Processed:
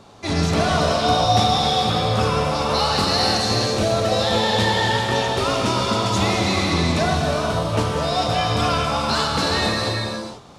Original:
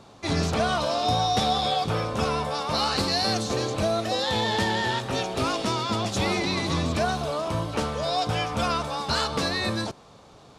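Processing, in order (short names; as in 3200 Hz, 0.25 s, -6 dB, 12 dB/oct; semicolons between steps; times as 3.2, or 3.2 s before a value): non-linear reverb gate 0.5 s flat, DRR -1 dB; gain +2.5 dB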